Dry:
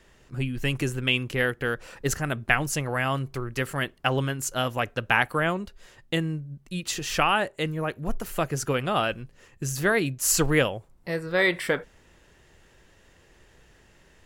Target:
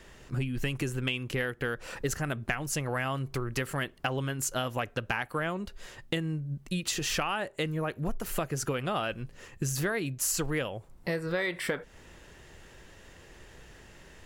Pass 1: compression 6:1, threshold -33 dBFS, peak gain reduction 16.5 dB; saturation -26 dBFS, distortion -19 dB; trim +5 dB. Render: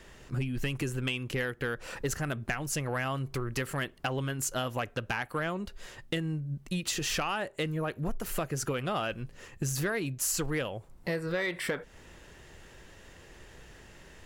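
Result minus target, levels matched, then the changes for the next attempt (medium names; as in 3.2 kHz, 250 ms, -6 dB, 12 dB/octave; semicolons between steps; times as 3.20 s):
saturation: distortion +10 dB
change: saturation -19 dBFS, distortion -30 dB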